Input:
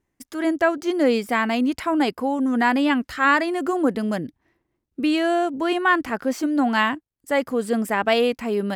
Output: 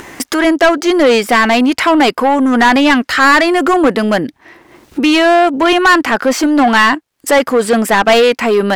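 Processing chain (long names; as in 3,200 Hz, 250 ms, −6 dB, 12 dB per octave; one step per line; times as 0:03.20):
upward compression, threshold −23 dBFS
mid-hump overdrive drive 21 dB, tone 5,000 Hz, clips at −6 dBFS
level +5 dB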